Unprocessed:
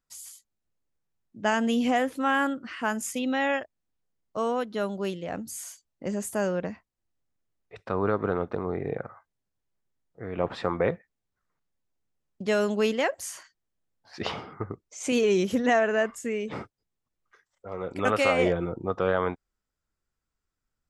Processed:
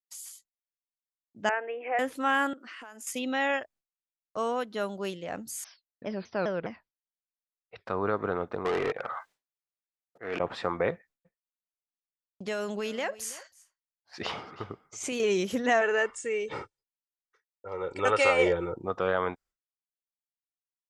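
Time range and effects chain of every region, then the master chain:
1.49–1.99 s: Chebyshev band-pass 320–2500 Hz, order 5 + peaking EQ 1.1 kHz -6.5 dB 0.53 oct
2.53–3.07 s: high-pass 250 Hz 24 dB/octave + compression 10:1, threshold -40 dBFS
5.64–7.86 s: brick-wall FIR low-pass 5.6 kHz + vibrato with a chosen wave saw down 4.9 Hz, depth 250 cents
8.65–10.40 s: slow attack 300 ms + overdrive pedal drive 26 dB, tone 5.1 kHz, clips at -17.5 dBFS
10.92–15.20 s: compression, threshold -25 dBFS + delay 326 ms -18.5 dB
15.81–18.75 s: brick-wall FIR low-pass 10 kHz + comb 2.2 ms, depth 62%
whole clip: expander -50 dBFS; bass shelf 400 Hz -7 dB

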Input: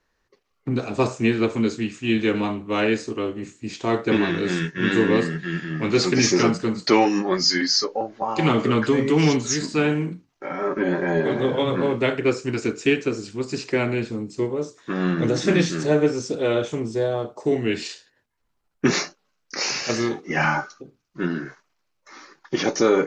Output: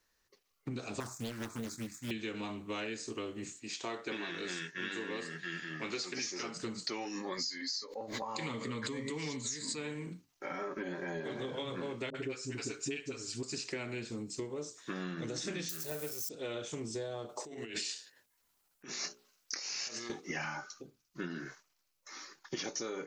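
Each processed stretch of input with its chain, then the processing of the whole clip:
1.00–2.11 s: companding laws mixed up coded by A + static phaser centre 1.2 kHz, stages 4 + loudspeaker Doppler distortion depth 0.9 ms
3.59–6.57 s: high-pass 460 Hz 6 dB/octave + treble shelf 6.5 kHz -8 dB
7.15–10.07 s: rippled EQ curve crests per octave 1, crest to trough 8 dB + swell ahead of each attack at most 70 dB/s
12.10–13.43 s: comb 7.3 ms, depth 63% + phase dispersion highs, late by 47 ms, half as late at 550 Hz
15.69–16.29 s: zero-crossing glitches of -24.5 dBFS + peaking EQ 270 Hz -9.5 dB 0.42 oct
17.29–20.10 s: bass shelf 130 Hz -12 dB + hum notches 60/120/180/240/300/360/420/480/540/600 Hz + compressor with a negative ratio -34 dBFS
whole clip: pre-emphasis filter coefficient 0.8; compression 12:1, threshold -40 dBFS; trim +4.5 dB

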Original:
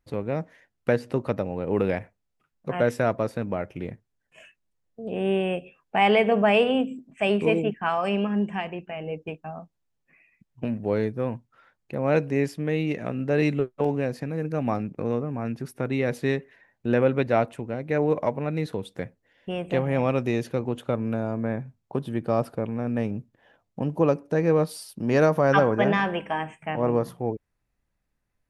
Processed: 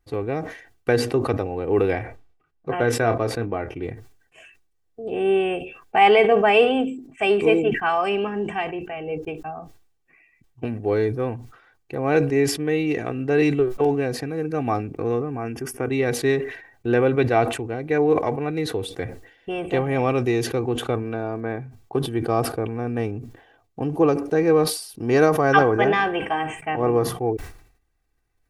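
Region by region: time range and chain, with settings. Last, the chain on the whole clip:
1.93–3.83 s: treble shelf 6.9 kHz -8 dB + doubling 26 ms -12 dB + tape noise reduction on one side only decoder only
15.37–15.91 s: Butterworth band-stop 4 kHz, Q 2.6 + peaking EQ 120 Hz -3.5 dB
21.02–21.59 s: Savitzky-Golay filter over 15 samples + bass shelf 140 Hz -8 dB + crackle 150 per s -58 dBFS
whole clip: comb 2.6 ms, depth 66%; decay stretcher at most 92 dB/s; trim +2 dB

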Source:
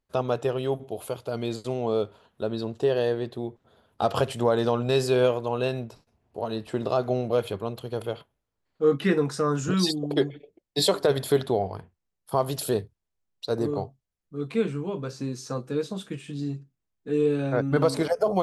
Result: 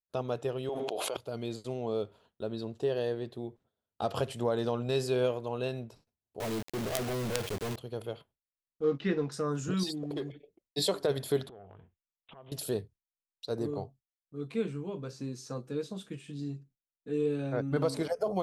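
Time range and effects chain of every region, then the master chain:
0.69–1.17 s: band-pass 460–6000 Hz + level flattener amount 100%
6.40–7.76 s: distance through air 190 m + companded quantiser 2-bit
8.83–9.32 s: companding laws mixed up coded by A + low-pass 5.5 kHz 24 dB/octave
9.83–10.32 s: high-pass 91 Hz 6 dB/octave + waveshaping leveller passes 1 + compression 4:1, threshold -26 dBFS
11.49–12.52 s: compression 8:1, threshold -37 dBFS + careless resampling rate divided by 6×, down none, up filtered + transformer saturation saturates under 730 Hz
whole clip: gate with hold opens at -47 dBFS; peaking EQ 1.2 kHz -3 dB 1.7 oct; trim -6.5 dB

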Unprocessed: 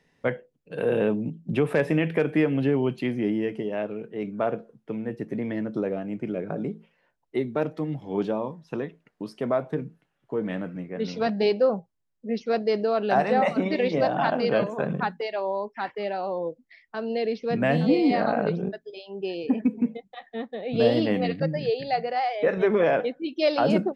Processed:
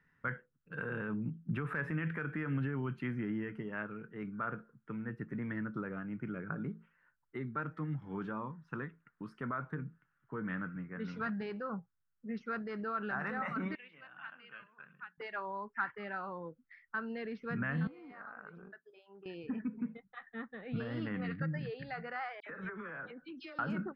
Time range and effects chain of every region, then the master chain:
13.75–15.18 s: band-pass filter 2.8 kHz, Q 5 + tilt EQ -3 dB/octave
17.87–19.26 s: high-pass 750 Hz + tilt EQ -4.5 dB/octave + compression 10:1, threshold -36 dBFS
22.40–23.59 s: phase dispersion lows, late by 68 ms, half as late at 2.2 kHz + compression 16:1, threshold -30 dBFS
whole clip: peak limiter -19 dBFS; FFT filter 140 Hz 0 dB, 670 Hz -16 dB, 1.4 kHz +10 dB, 2.3 kHz -6 dB, 4.1 kHz -16 dB; trim -4 dB

